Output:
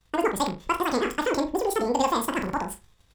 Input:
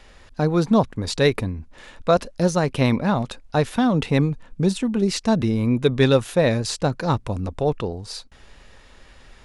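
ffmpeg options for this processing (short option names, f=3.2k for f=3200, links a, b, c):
-filter_complex "[0:a]agate=range=-33dB:threshold=-36dB:ratio=3:detection=peak,asplit=2[a][b];[b]acompressor=threshold=-27dB:ratio=6,volume=-0.5dB[c];[a][c]amix=inputs=2:normalize=0,atempo=1.5,asplit=2[d][e];[e]adelay=41,volume=-11dB[f];[d][f]amix=inputs=2:normalize=0,asplit=2[g][h];[h]adelay=79,lowpass=f=2.3k:p=1,volume=-7dB,asplit=2[i][j];[j]adelay=79,lowpass=f=2.3k:p=1,volume=0.35,asplit=2[k][l];[l]adelay=79,lowpass=f=2.3k:p=1,volume=0.35,asplit=2[m][n];[n]adelay=79,lowpass=f=2.3k:p=1,volume=0.35[o];[i][k][m][o]amix=inputs=4:normalize=0[p];[g][p]amix=inputs=2:normalize=0,asetrate=88200,aresample=44100,volume=-8dB"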